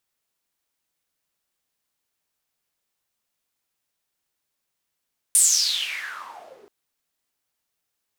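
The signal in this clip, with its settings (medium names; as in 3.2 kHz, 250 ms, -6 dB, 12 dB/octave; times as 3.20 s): swept filtered noise white, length 1.33 s bandpass, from 9.6 kHz, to 370 Hz, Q 8.6, exponential, gain ramp -23 dB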